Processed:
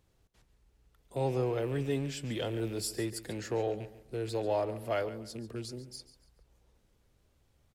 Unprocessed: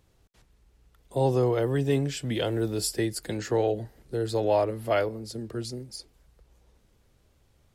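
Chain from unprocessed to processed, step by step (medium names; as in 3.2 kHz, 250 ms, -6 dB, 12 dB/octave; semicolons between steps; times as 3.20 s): rattle on loud lows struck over -33 dBFS, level -36 dBFS; in parallel at -10.5 dB: overload inside the chain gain 32 dB; on the sum: feedback delay 141 ms, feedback 32%, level -15 dB; trim -8 dB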